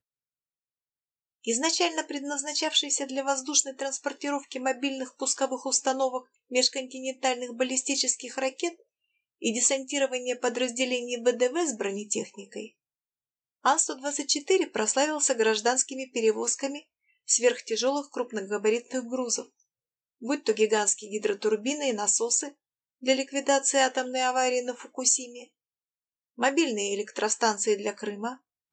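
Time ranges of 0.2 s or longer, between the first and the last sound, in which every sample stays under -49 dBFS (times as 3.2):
6.23–6.51
8.8–9.42
12.69–13.64
16.83–17.28
19.46–20.22
22.52–23.02
25.45–26.38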